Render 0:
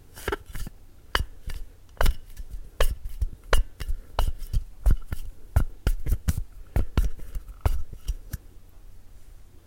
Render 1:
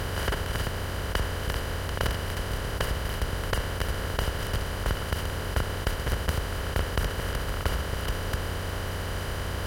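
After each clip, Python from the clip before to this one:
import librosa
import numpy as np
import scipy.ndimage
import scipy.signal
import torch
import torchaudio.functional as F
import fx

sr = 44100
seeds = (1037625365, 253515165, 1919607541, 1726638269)

y = fx.bin_compress(x, sr, power=0.2)
y = scipy.signal.sosfilt(scipy.signal.butter(2, 47.0, 'highpass', fs=sr, output='sos'), y)
y = F.gain(torch.from_numpy(y), -9.0).numpy()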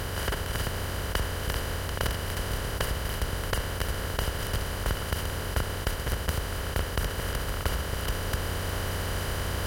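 y = fx.high_shelf(x, sr, hz=6000.0, db=5.5)
y = fx.rider(y, sr, range_db=10, speed_s=0.5)
y = F.gain(torch.from_numpy(y), -1.0).numpy()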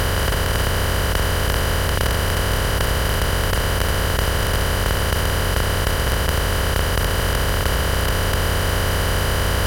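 y = fx.bin_compress(x, sr, power=0.2)
y = fx.dmg_crackle(y, sr, seeds[0], per_s=47.0, level_db=-35.0)
y = F.gain(torch.from_numpy(y), 3.5).numpy()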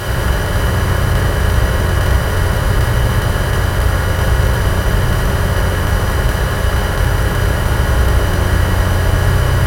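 y = fx.rev_fdn(x, sr, rt60_s=1.4, lf_ratio=1.45, hf_ratio=0.3, size_ms=49.0, drr_db=-7.5)
y = F.gain(torch.from_numpy(y), -5.5).numpy()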